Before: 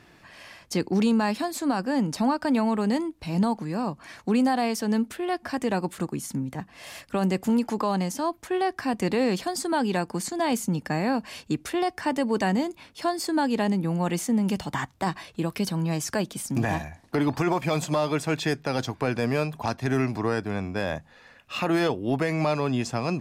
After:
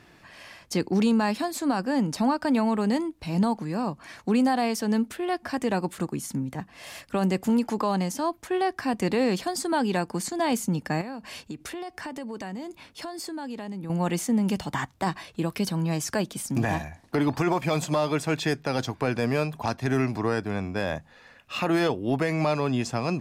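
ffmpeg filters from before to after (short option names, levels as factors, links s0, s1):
-filter_complex "[0:a]asettb=1/sr,asplit=3[s0][s1][s2];[s0]atrim=end=11.014[s3];[s1]atrim=start=11.01:end=13.9,asetpts=PTS-STARTPTS,afade=t=in:d=0.004:c=qsin,afade=t=out:st=2.886:d=0.004:c=qsin,acompressor=threshold=0.0224:ratio=5:attack=3.2:release=140:knee=1:detection=peak[s4];[s2]atrim=start=13.896[s5];[s3][s4]acrossfade=d=0.004:c1=hsin:c2=qsin[s6];[s6][s5]acrossfade=d=0.004:c1=qsin:c2=hsin"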